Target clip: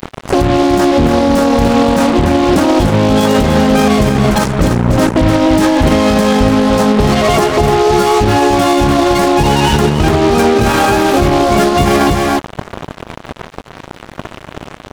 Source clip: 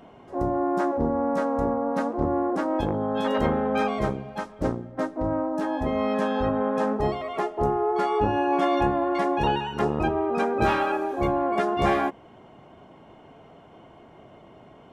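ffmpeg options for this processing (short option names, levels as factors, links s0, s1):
-af "bass=f=250:g=10,treble=f=4000:g=12,acompressor=threshold=0.0398:ratio=6,acrusher=bits=5:mix=0:aa=0.5,aecho=1:1:294:0.422,alimiter=level_in=23.7:limit=0.891:release=50:level=0:latency=1,volume=0.891"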